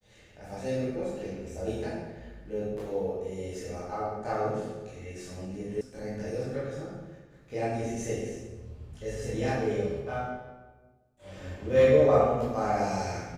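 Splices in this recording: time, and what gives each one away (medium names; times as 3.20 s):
5.81 s: sound stops dead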